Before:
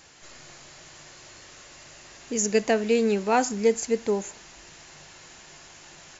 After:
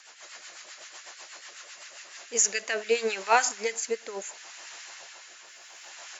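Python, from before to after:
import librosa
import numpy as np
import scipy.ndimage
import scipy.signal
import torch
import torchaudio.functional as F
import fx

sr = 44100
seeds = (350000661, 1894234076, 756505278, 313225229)

y = fx.mod_noise(x, sr, seeds[0], snr_db=29, at=(5.45, 5.89))
y = fx.filter_lfo_highpass(y, sr, shape='sine', hz=7.1, low_hz=630.0, high_hz=1600.0, q=1.2)
y = fx.rotary_switch(y, sr, hz=8.0, then_hz=0.7, switch_at_s=1.75)
y = y * 10.0 ** (4.5 / 20.0)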